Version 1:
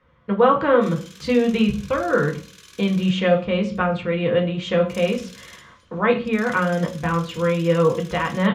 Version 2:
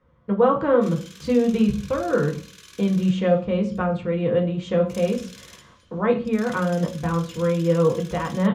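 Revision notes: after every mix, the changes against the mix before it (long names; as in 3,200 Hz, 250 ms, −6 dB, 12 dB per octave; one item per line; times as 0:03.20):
speech: add parametric band 2,600 Hz −10 dB 2.4 octaves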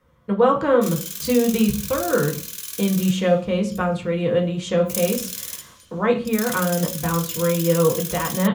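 master: remove head-to-tape spacing loss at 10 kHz 21 dB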